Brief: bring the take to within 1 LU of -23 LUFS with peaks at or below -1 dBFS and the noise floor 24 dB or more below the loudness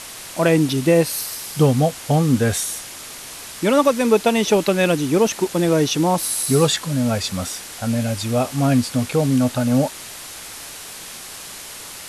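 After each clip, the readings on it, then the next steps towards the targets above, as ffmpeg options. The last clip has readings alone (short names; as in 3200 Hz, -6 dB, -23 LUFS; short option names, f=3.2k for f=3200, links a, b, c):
noise floor -36 dBFS; noise floor target -43 dBFS; loudness -19.0 LUFS; peak -4.0 dBFS; loudness target -23.0 LUFS
-> -af "afftdn=nr=7:nf=-36"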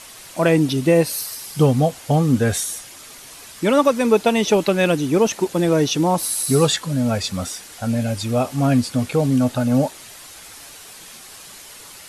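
noise floor -41 dBFS; noise floor target -43 dBFS
-> -af "afftdn=nr=6:nf=-41"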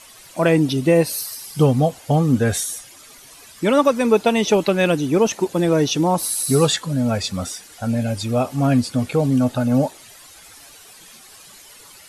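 noise floor -45 dBFS; loudness -19.0 LUFS; peak -4.0 dBFS; loudness target -23.0 LUFS
-> -af "volume=-4dB"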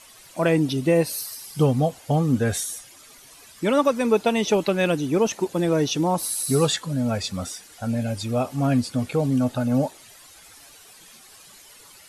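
loudness -23.0 LUFS; peak -8.0 dBFS; noise floor -49 dBFS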